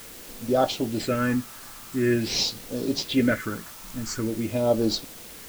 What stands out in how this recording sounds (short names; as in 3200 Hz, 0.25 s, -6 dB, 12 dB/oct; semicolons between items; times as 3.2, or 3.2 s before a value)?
phasing stages 4, 0.46 Hz, lowest notch 450–1900 Hz; a quantiser's noise floor 8-bit, dither triangular